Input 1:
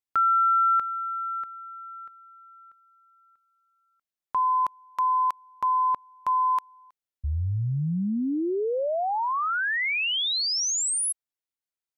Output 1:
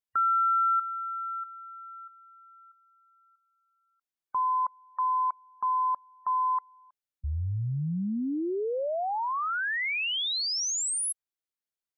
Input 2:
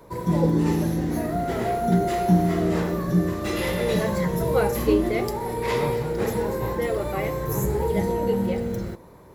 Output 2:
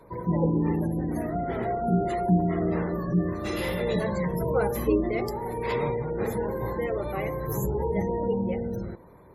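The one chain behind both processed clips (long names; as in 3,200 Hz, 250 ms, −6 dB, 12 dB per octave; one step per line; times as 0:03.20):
gate on every frequency bin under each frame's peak −30 dB strong
level −3.5 dB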